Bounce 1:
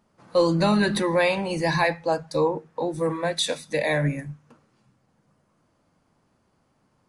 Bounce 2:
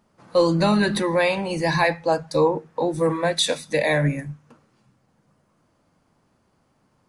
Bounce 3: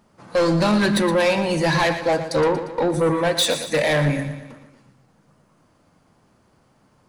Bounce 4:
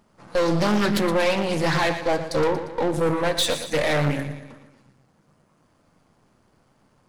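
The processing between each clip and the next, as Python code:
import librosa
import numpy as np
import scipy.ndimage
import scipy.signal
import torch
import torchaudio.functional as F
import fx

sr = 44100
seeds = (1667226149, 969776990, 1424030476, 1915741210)

y1 = fx.rider(x, sr, range_db=10, speed_s=2.0)
y1 = y1 * 10.0 ** (2.0 / 20.0)
y2 = 10.0 ** (-20.0 / 20.0) * np.tanh(y1 / 10.0 ** (-20.0 / 20.0))
y2 = fx.echo_feedback(y2, sr, ms=117, feedback_pct=53, wet_db=-11.0)
y2 = y2 * 10.0 ** (5.5 / 20.0)
y3 = np.where(y2 < 0.0, 10.0 ** (-7.0 / 20.0) * y2, y2)
y3 = fx.doppler_dist(y3, sr, depth_ms=0.37)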